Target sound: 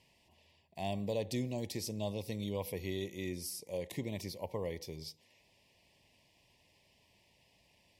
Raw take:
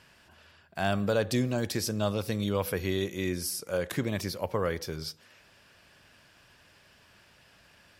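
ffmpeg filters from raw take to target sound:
ffmpeg -i in.wav -af "asuperstop=centerf=1400:order=8:qfactor=1.6,volume=-8.5dB" out.wav

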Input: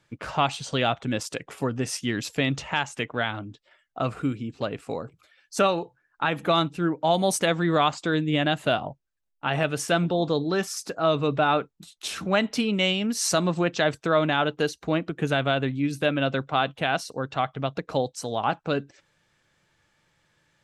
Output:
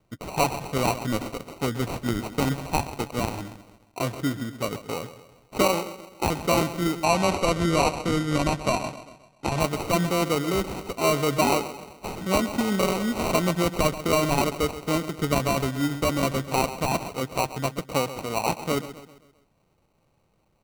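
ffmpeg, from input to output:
ffmpeg -i in.wav -filter_complex "[0:a]aecho=1:1:131|262|393|524|655:0.224|0.103|0.0474|0.0218|0.01,acrusher=samples=26:mix=1:aa=0.000001,asettb=1/sr,asplit=3[link_01][link_02][link_03];[link_01]atrim=end=7.044[link_04];[link_02]atrim=start=7.04:end=9.6,asetpts=PTS-STARTPTS,afade=type=in:duration=0.004:curve=qsin,afade=type=out:start_time=2.556:duration=0.004:curve=qsin,lowpass=9400[link_05];[link_03]atrim=start=9.596[link_06];[link_04][link_05]acrossfade=duration=0.004:curve1=hsin:curve2=qsin[link_07];[link_07][link_06]acrossfade=duration=0.004:curve1=qsin:curve2=hsin" out.wav

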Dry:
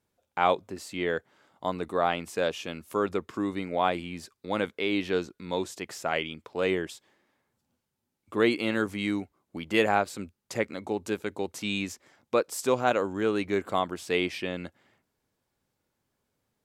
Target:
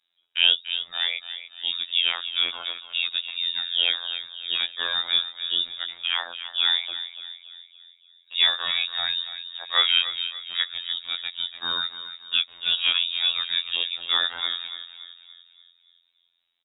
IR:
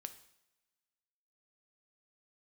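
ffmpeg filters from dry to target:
-filter_complex "[0:a]asplit=2[link_01][link_02];[link_02]adelay=287,lowpass=frequency=2700:poles=1,volume=-10.5dB,asplit=2[link_03][link_04];[link_04]adelay=287,lowpass=frequency=2700:poles=1,volume=0.51,asplit=2[link_05][link_06];[link_06]adelay=287,lowpass=frequency=2700:poles=1,volume=0.51,asplit=2[link_07][link_08];[link_08]adelay=287,lowpass=frequency=2700:poles=1,volume=0.51,asplit=2[link_09][link_10];[link_10]adelay=287,lowpass=frequency=2700:poles=1,volume=0.51,asplit=2[link_11][link_12];[link_12]adelay=287,lowpass=frequency=2700:poles=1,volume=0.51[link_13];[link_01][link_03][link_05][link_07][link_09][link_11][link_13]amix=inputs=7:normalize=0,lowpass=frequency=3300:width_type=q:width=0.5098,lowpass=frequency=3300:width_type=q:width=0.6013,lowpass=frequency=3300:width_type=q:width=0.9,lowpass=frequency=3300:width_type=q:width=2.563,afreqshift=-3900,afftfilt=real='hypot(re,im)*cos(PI*b)':imag='0':win_size=2048:overlap=0.75,volume=5.5dB"

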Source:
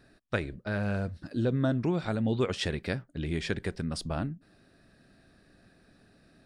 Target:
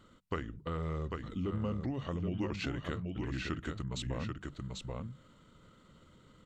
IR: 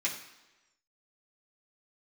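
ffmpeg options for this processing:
-filter_complex "[0:a]bandreject=frequency=60:width_type=h:width=6,bandreject=frequency=120:width_type=h:width=6,bandreject=frequency=180:width_type=h:width=6,bandreject=frequency=240:width_type=h:width=6,asplit=2[link_01][link_02];[link_02]aecho=0:1:784:0.501[link_03];[link_01][link_03]amix=inputs=2:normalize=0,acompressor=threshold=-38dB:ratio=2,asetrate=35002,aresample=44100,atempo=1.25992"

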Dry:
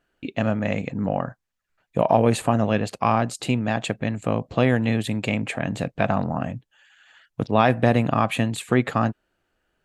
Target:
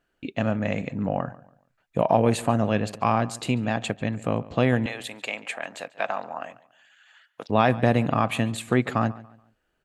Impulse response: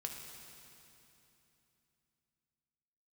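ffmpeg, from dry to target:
-filter_complex "[0:a]asettb=1/sr,asplit=3[link_01][link_02][link_03];[link_01]atrim=end=4.864[link_04];[link_02]atrim=start=4.86:end=7.5,asetpts=PTS-STARTPTS,afade=type=in:duration=0.004:curve=qsin,afade=type=out:start_time=2.636:duration=0.004:curve=qsin,highpass=650[link_05];[link_03]atrim=start=7.496[link_06];[link_04][link_05]acrossfade=duration=0.004:curve1=hsin:curve2=qsin[link_07];[link_07][link_06]acrossfade=duration=0.004:curve1=qsin:curve2=hsin,asplit=2[link_08][link_09];[link_09]adelay=142,lowpass=frequency=4300:poles=1,volume=-19dB,asplit=2[link_10][link_11];[link_11]adelay=142,lowpass=frequency=4300:poles=1,volume=0.33,asplit=2[link_12][link_13];[link_13]adelay=142,lowpass=frequency=4300:poles=1,volume=0.33[link_14];[link_08][link_10][link_12][link_14]amix=inputs=4:normalize=0,volume=-2dB"

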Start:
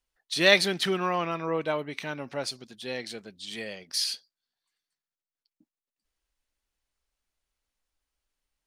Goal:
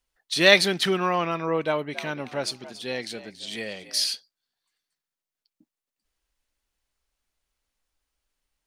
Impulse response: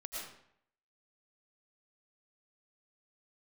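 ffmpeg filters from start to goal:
-filter_complex "[0:a]asettb=1/sr,asplit=3[link_01][link_02][link_03];[link_01]atrim=end=1.654[link_04];[link_02]atrim=start=1.65:end=4.07,asetpts=PTS-STARTPTS,afade=type=in:duration=0.004:curve=qsin,afade=type=out:start_time=2.416:duration=0.004:curve=qsin,asplit=4[link_05][link_06][link_07][link_08];[link_06]adelay=281,afreqshift=67,volume=-15dB[link_09];[link_07]adelay=562,afreqshift=134,volume=-25.5dB[link_10];[link_08]adelay=843,afreqshift=201,volume=-35.9dB[link_11];[link_05][link_09][link_10][link_11]amix=inputs=4:normalize=0,atrim=end_sample=106722[link_12];[link_03]atrim=start=4.066[link_13];[link_04][link_12]acrossfade=duration=0.004:curve1=hsin:curve2=qsin[link_14];[link_14][link_13]acrossfade=duration=0.004:curve1=qsin:curve2=hsin,volume=3.5dB"

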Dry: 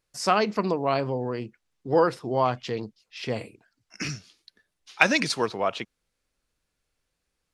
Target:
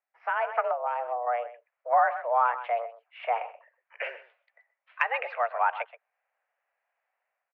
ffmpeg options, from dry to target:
ffmpeg -i in.wav -filter_complex "[0:a]aecho=1:1:127:0.158,highpass=frequency=330:width_type=q:width=0.5412,highpass=frequency=330:width_type=q:width=1.307,lowpass=frequency=2100:width_type=q:width=0.5176,lowpass=frequency=2100:width_type=q:width=0.7071,lowpass=frequency=2100:width_type=q:width=1.932,afreqshift=240,acompressor=threshold=-25dB:ratio=2.5,asettb=1/sr,asplit=3[link_01][link_02][link_03];[link_01]atrim=end=0.714[link_04];[link_02]atrim=start=0.71:end=1.27,asetpts=PTS-STARTPTS,afade=type=in:duration=0.004:curve=qsin,afade=type=out:start_time=0.556:duration=0.004:curve=qsin,equalizer=frequency=1800:width=0.54:gain=-10.5[link_05];[link_03]atrim=start=1.266[link_06];[link_04][link_05]acrossfade=duration=0.004:curve1=hsin:curve2=qsin[link_07];[link_07][link_06]acrossfade=duration=0.004:curve1=qsin:curve2=hsin,dynaudnorm=framelen=160:gausssize=5:maxgain=11dB,volume=-6.5dB" out.wav

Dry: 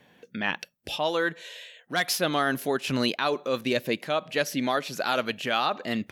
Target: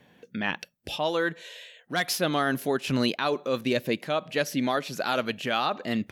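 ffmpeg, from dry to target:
ffmpeg -i in.wav -af "lowshelf=frequency=350:gain=4.5,volume=-1.5dB" out.wav

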